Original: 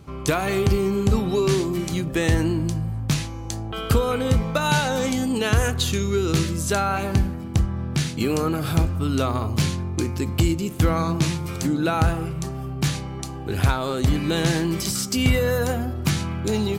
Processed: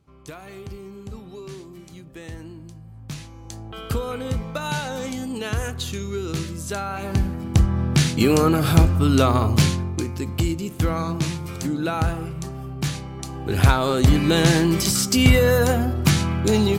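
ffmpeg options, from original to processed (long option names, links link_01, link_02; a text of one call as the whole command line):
ffmpeg -i in.wav -af "volume=12.5dB,afade=type=in:start_time=2.84:duration=0.83:silence=0.281838,afade=type=in:start_time=6.95:duration=0.83:silence=0.266073,afade=type=out:start_time=9.51:duration=0.54:silence=0.398107,afade=type=in:start_time=13.16:duration=0.54:silence=0.446684" out.wav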